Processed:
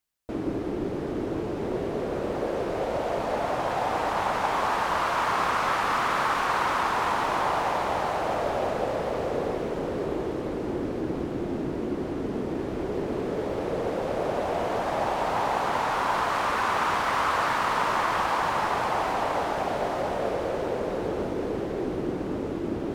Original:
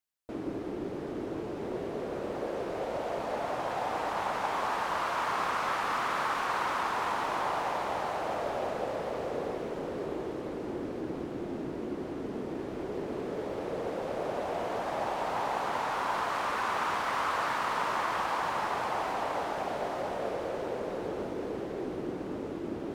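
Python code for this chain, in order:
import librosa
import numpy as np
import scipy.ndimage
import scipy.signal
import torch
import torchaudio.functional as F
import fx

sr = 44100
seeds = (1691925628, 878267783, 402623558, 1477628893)

y = fx.low_shelf(x, sr, hz=110.0, db=7.5)
y = y * 10.0 ** (5.5 / 20.0)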